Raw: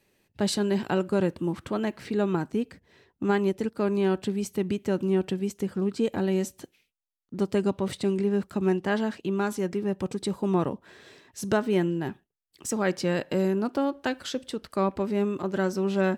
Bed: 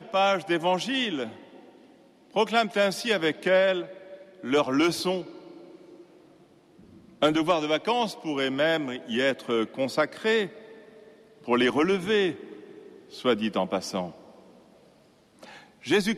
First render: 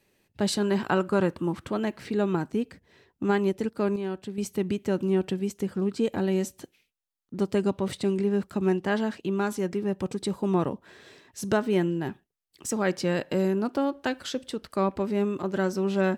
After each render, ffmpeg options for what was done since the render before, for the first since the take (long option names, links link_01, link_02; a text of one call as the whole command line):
ffmpeg -i in.wav -filter_complex "[0:a]asettb=1/sr,asplit=3[link_01][link_02][link_03];[link_01]atrim=end=0.624[link_04];[link_02]atrim=start=0.62:end=1.52,asetpts=PTS-STARTPTS,afade=type=in:duration=0.004:curve=qsin,afade=type=out:start_time=0.896:duration=0.004:curve=qsin,equalizer=frequency=1200:width_type=o:width=0.96:gain=7.5[link_05];[link_03]atrim=start=1.516[link_06];[link_04][link_05]acrossfade=duration=0.004:curve1=hsin:curve2=qsin[link_07];[link_07][link_06]acrossfade=duration=0.004:curve1=qsin:curve2=hsin,asplit=3[link_08][link_09][link_10];[link_08]atrim=end=3.962[link_11];[link_09]atrim=start=3.958:end=4.382,asetpts=PTS-STARTPTS,volume=-7.5dB[link_12];[link_10]atrim=start=4.378[link_13];[link_11][link_12]acrossfade=duration=0.004:curve1=hsin:curve2=hsin[link_14];[link_14][link_13]acrossfade=duration=0.004:curve1=hsin:curve2=hsin" out.wav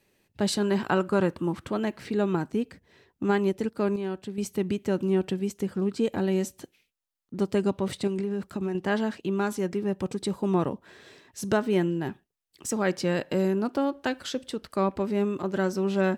ffmpeg -i in.wav -filter_complex "[0:a]asettb=1/sr,asplit=3[link_01][link_02][link_03];[link_01]atrim=end=8.074[link_04];[link_02]atrim=start=8.07:end=8.75,asetpts=PTS-STARTPTS,afade=type=in:duration=0.004:curve=qsin,afade=type=out:start_time=0.676:duration=0.004:curve=qsin,acompressor=threshold=-25dB:ratio=6:attack=3.2:release=140:knee=1:detection=peak[link_05];[link_03]atrim=start=8.746[link_06];[link_04][link_05]acrossfade=duration=0.004:curve1=hsin:curve2=qsin[link_07];[link_07][link_06]acrossfade=duration=0.004:curve1=qsin:curve2=hsin" out.wav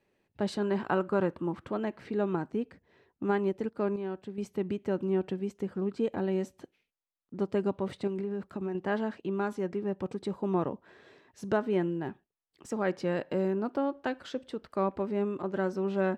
ffmpeg -i in.wav -af "lowpass=frequency=1100:poles=1,lowshelf=frequency=320:gain=-7.5" out.wav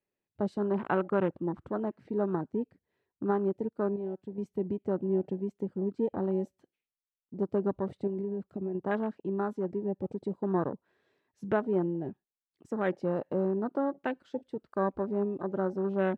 ffmpeg -i in.wav -af "afwtdn=0.0141" out.wav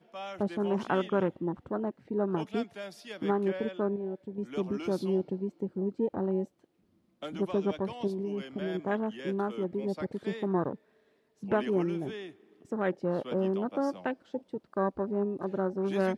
ffmpeg -i in.wav -i bed.wav -filter_complex "[1:a]volume=-18dB[link_01];[0:a][link_01]amix=inputs=2:normalize=0" out.wav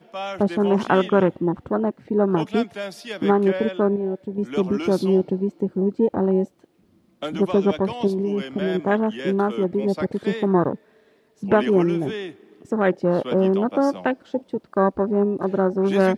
ffmpeg -i in.wav -af "volume=10.5dB" out.wav